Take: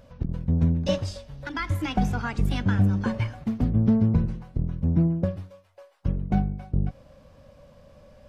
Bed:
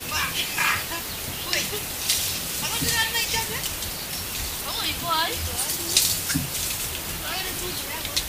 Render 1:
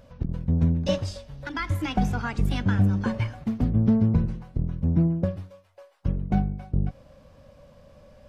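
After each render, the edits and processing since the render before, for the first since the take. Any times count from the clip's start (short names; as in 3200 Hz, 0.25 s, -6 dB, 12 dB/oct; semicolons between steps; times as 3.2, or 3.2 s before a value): nothing audible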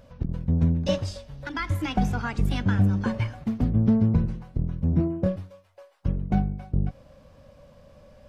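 4.9–5.36 doubler 27 ms -4 dB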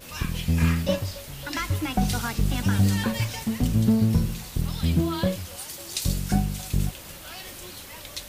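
add bed -11 dB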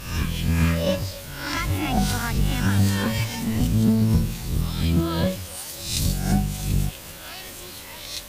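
spectral swells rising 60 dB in 0.67 s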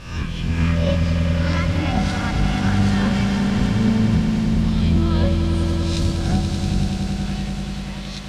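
air absorption 100 m; on a send: swelling echo 96 ms, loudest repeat 5, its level -9 dB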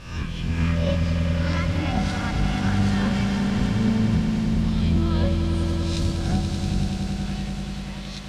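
gain -3.5 dB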